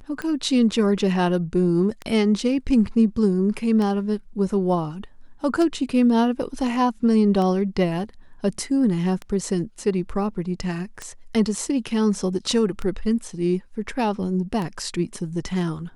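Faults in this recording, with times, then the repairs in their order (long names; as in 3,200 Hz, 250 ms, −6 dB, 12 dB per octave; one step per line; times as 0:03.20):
scratch tick 33 1/3 rpm −16 dBFS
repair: click removal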